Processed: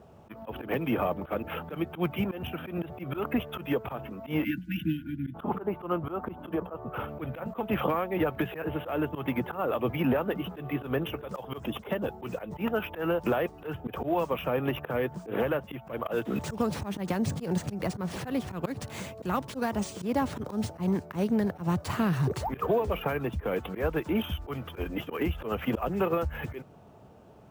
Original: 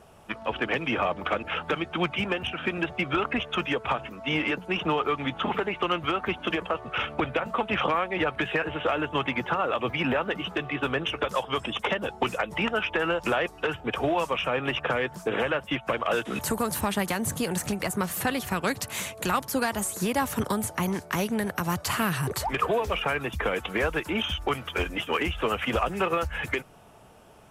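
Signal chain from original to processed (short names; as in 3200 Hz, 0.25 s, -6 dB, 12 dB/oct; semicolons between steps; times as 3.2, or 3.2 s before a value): 4.44–5.35 spectral delete 330–1400 Hz; careless resampling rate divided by 3×, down none, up hold; 4.97–7.09 resonant high shelf 1600 Hz -7.5 dB, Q 1.5; auto swell 0.103 s; HPF 65 Hz; tilt shelf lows +7.5 dB; gain -4 dB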